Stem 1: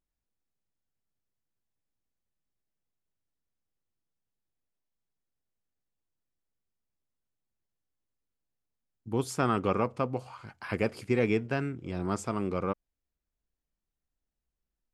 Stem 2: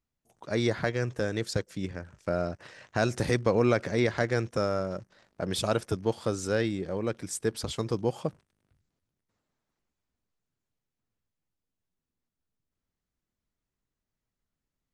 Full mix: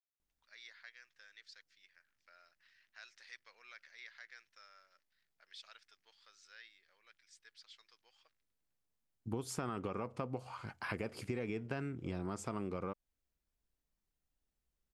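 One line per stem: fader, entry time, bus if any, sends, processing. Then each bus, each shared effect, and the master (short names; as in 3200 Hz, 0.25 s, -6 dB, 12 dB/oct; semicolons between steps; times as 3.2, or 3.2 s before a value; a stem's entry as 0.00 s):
0.0 dB, 0.20 s, no send, limiter -19 dBFS, peak gain reduction 5.5 dB
-17.5 dB, 0.00 s, no send, Chebyshev band-pass 1800–4900 Hz, order 2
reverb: off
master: compressor 6:1, threshold -36 dBFS, peak gain reduction 10.5 dB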